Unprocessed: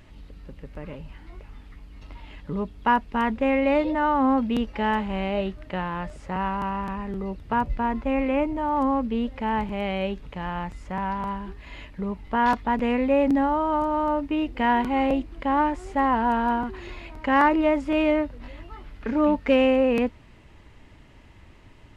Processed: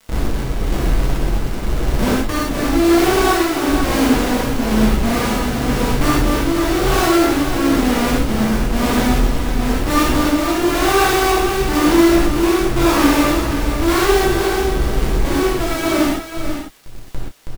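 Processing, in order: median filter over 15 samples; low shelf 290 Hz +11.5 dB; in parallel at 0 dB: compressor 12:1, threshold -31 dBFS, peak gain reduction 20.5 dB; on the sum: varispeed +25%; Schmitt trigger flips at -25 dBFS; bit-crush 5-bit; crackle 180/s -32 dBFS; tremolo 1 Hz, depth 43%; on a send: echo 0.489 s -9 dB; on the sum: non-linear reverb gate 0.15 s flat, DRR -6.5 dB; gain -3 dB

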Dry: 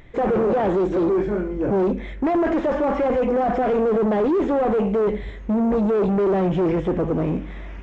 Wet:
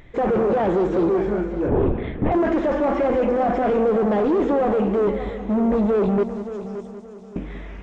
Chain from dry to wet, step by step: 6.23–7.36 inverse Chebyshev high-pass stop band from 1200 Hz, stop band 70 dB; multi-head echo 0.191 s, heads first and third, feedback 48%, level -13 dB; 1.68–2.32 LPC vocoder at 8 kHz whisper

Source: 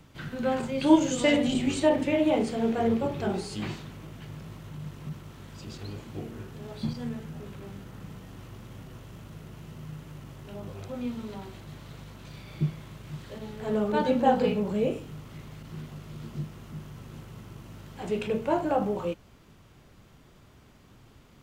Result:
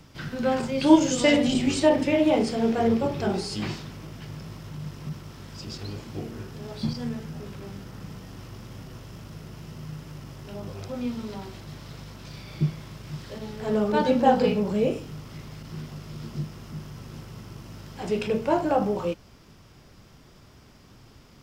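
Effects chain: bell 5200 Hz +10.5 dB 0.29 oct; gain +3 dB

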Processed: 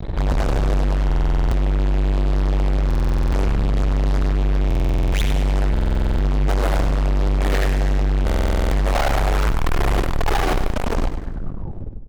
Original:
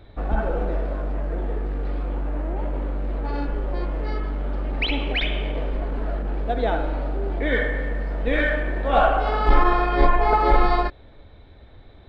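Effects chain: tape stop at the end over 1.83 s; tilt -2.5 dB/oct; in parallel at -1.5 dB: compressor, threshold -16 dBFS, peak gain reduction 17 dB; on the sum: fuzz box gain 30 dB, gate -33 dBFS; on a send: feedback echo 0.1 s, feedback 46%, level -10.5 dB; on the sum: stuck buffer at 1.05/2.86/4.66/5.72/8.25, samples 2048, times 9; gain -4 dB

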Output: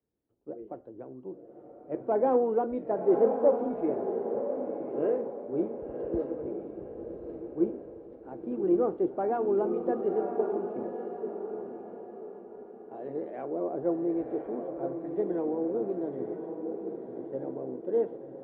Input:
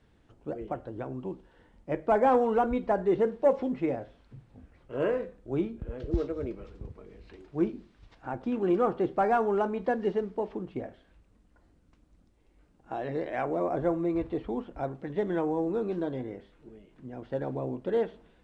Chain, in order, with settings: band-pass 390 Hz, Q 1.3; diffused feedback echo 1.049 s, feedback 54%, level -4.5 dB; three-band expander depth 40%

